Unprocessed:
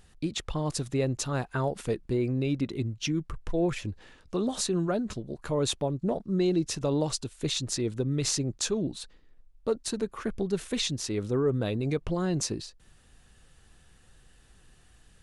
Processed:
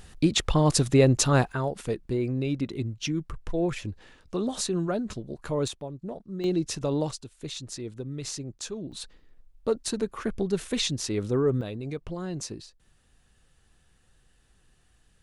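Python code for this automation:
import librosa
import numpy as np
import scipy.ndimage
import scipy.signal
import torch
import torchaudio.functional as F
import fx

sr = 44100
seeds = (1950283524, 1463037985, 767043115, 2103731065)

y = fx.gain(x, sr, db=fx.steps((0.0, 9.0), (1.52, 0.0), (5.68, -8.0), (6.44, 0.0), (7.11, -7.0), (8.92, 2.0), (11.61, -5.5)))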